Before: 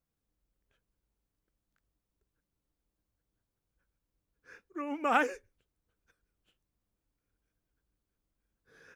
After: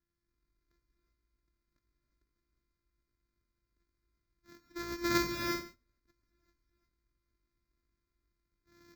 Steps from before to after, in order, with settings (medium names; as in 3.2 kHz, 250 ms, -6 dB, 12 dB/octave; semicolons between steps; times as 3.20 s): sorted samples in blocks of 128 samples; static phaser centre 2.9 kHz, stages 6; gated-style reverb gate 390 ms rising, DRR 2 dB